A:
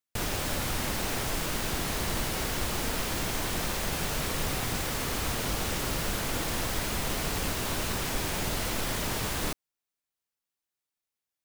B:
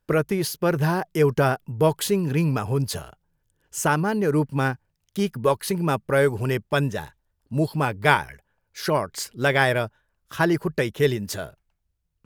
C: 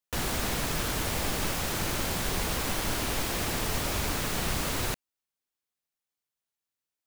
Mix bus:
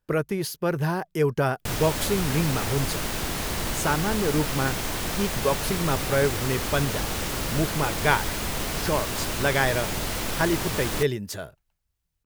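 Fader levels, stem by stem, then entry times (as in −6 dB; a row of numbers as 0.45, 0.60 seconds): +2.0 dB, −3.5 dB, muted; 1.50 s, 0.00 s, muted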